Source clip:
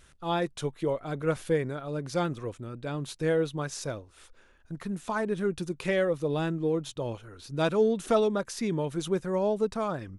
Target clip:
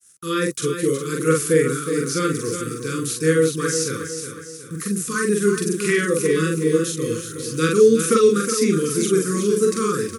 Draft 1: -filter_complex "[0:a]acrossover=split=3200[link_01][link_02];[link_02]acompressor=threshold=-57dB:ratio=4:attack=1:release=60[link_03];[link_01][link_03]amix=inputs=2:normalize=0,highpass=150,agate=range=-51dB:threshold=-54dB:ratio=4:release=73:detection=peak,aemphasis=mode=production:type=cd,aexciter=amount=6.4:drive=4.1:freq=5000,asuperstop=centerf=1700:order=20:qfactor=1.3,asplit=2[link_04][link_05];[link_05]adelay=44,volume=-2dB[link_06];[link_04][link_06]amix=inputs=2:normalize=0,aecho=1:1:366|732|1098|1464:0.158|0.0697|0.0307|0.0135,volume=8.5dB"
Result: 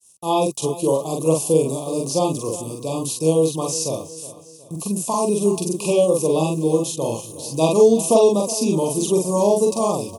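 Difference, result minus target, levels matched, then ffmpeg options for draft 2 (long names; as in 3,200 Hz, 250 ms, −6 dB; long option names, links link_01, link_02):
2,000 Hz band −15.5 dB; echo-to-direct −7.5 dB
-filter_complex "[0:a]acrossover=split=3200[link_01][link_02];[link_02]acompressor=threshold=-57dB:ratio=4:attack=1:release=60[link_03];[link_01][link_03]amix=inputs=2:normalize=0,highpass=150,agate=range=-51dB:threshold=-54dB:ratio=4:release=73:detection=peak,aemphasis=mode=production:type=cd,aexciter=amount=6.4:drive=4.1:freq=5000,asuperstop=centerf=750:order=20:qfactor=1.3,asplit=2[link_04][link_05];[link_05]adelay=44,volume=-2dB[link_06];[link_04][link_06]amix=inputs=2:normalize=0,aecho=1:1:366|732|1098|1464|1830:0.376|0.165|0.0728|0.032|0.0141,volume=8.5dB"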